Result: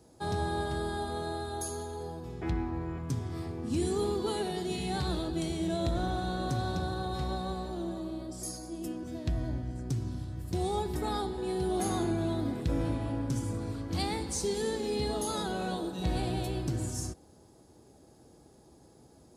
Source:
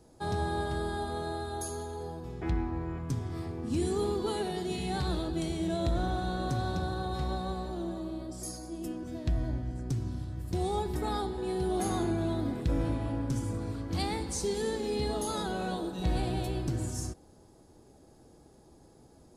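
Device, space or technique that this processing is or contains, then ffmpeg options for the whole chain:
exciter from parts: -filter_complex "[0:a]asplit=2[s0][s1];[s1]highpass=2100,asoftclip=type=tanh:threshold=0.0224,volume=0.224[s2];[s0][s2]amix=inputs=2:normalize=0,highpass=55"

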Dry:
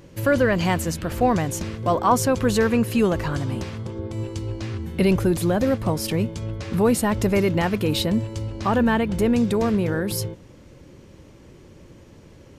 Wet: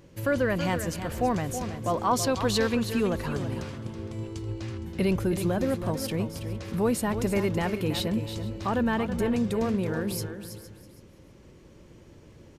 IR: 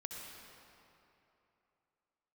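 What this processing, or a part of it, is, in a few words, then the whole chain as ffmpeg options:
ducked delay: -filter_complex "[0:a]asplit=3[s0][s1][s2];[s1]adelay=462,volume=0.631[s3];[s2]apad=whole_len=575421[s4];[s3][s4]sidechaincompress=threshold=0.0126:ratio=8:attack=16:release=1190[s5];[s0][s5]amix=inputs=2:normalize=0,asettb=1/sr,asplit=3[s6][s7][s8];[s6]atrim=end=2.134[s9];[s7]atrim=start=2.13:end=2.75,asetpts=PTS-STARTPTS,afade=t=in:d=0.004:c=qsin,afade=t=out:st=0.616:d=0.004:c=qsin,equalizer=f=4000:w=1.2:g=10[s10];[s8]atrim=start=2.746[s11];[s9][s10]acrossfade=d=0.004:c1=hsin:c2=qsin[s12];[s12][s11]acrossfade=d=0.004:c1=qsin:c2=hsin,aecho=1:1:326|652|978:0.335|0.0636|0.0121,volume=0.473"

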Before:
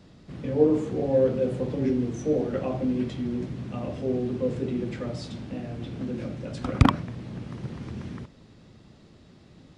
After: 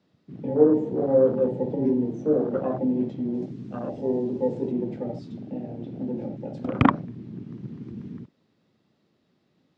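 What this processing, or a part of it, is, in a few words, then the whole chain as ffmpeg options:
over-cleaned archive recording: -filter_complex "[0:a]asettb=1/sr,asplit=3[s0][s1][s2];[s0]atrim=end=3.344[s3];[s1]atrim=start=3.34:end=4.72,asetpts=PTS-STARTPTS,afade=t=in:d=0.004:c=qsin,afade=t=out:st=1.376:d=0.004:c=qsin,bass=f=250:g=-2,treble=f=4000:g=9[s4];[s2]atrim=start=4.716[s5];[s3][s4]acrossfade=d=0.004:c1=hsin:c2=qsin[s6];[s6][s5]acrossfade=d=0.004:c1=qsin:c2=hsin,highpass=170,lowpass=6100,afwtdn=0.0224,volume=1.41"

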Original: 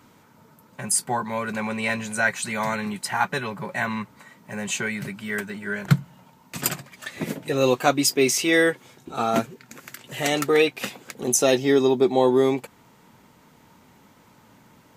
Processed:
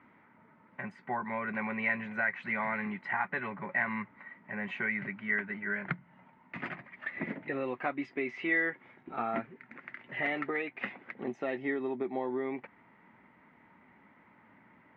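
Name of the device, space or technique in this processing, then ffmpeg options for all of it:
bass amplifier: -af "acompressor=threshold=0.0708:ratio=5,highpass=81,equalizer=f=94:t=q:w=4:g=-7,equalizer=f=140:t=q:w=4:g=-8,equalizer=f=470:t=q:w=4:g=-6,equalizer=f=2000:t=q:w=4:g=10,lowpass=f=2300:w=0.5412,lowpass=f=2300:w=1.3066,volume=0.501"

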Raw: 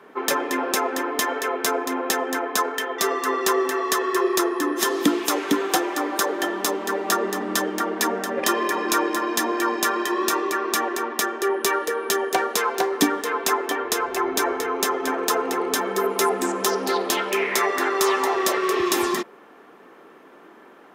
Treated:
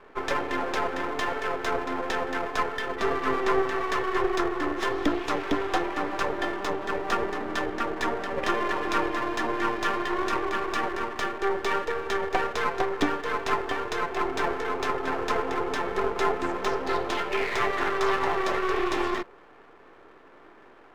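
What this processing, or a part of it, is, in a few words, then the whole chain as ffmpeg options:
crystal radio: -filter_complex "[0:a]asettb=1/sr,asplit=3[s0][s1][s2];[s0]atrim=end=2.864[s3];[s1]atrim=start=2.86:end=3.62,asetpts=PTS-STARTPTS,afade=t=in:d=0.004:c=qsin,afade=t=out:st=0.756:d=0.004:c=qsin,bass=f=250:g=14,treble=f=4000:g=-4[s4];[s2]atrim=start=3.616[s5];[s3][s4]acrossfade=d=0.004:c1=hsin:c2=qsin[s6];[s6][s5]acrossfade=d=0.004:c1=qsin:c2=hsin,highpass=270,lowpass=2800,aeval=exprs='if(lt(val(0),0),0.251*val(0),val(0))':c=same"

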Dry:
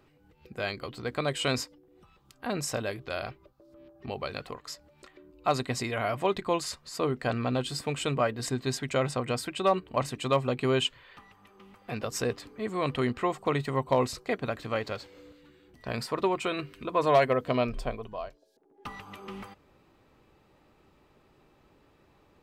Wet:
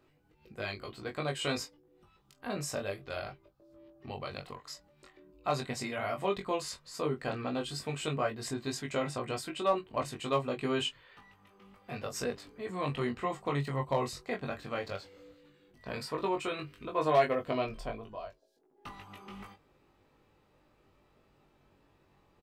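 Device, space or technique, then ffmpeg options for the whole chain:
double-tracked vocal: -filter_complex "[0:a]asplit=2[s0][s1];[s1]adelay=22,volume=0.282[s2];[s0][s2]amix=inputs=2:normalize=0,flanger=delay=19:depth=2:speed=0.11,volume=0.794"

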